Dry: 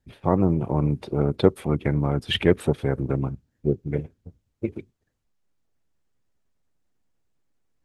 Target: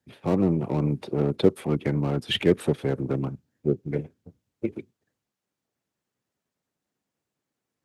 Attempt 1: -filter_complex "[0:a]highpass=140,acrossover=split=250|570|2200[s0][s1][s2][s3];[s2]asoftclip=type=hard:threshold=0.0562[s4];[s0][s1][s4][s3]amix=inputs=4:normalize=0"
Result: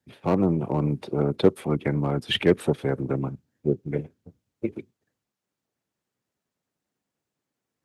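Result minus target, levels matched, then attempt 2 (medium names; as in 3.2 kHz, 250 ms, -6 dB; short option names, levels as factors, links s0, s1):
hard clipper: distortion -7 dB
-filter_complex "[0:a]highpass=140,acrossover=split=250|570|2200[s0][s1][s2][s3];[s2]asoftclip=type=hard:threshold=0.0168[s4];[s0][s1][s4][s3]amix=inputs=4:normalize=0"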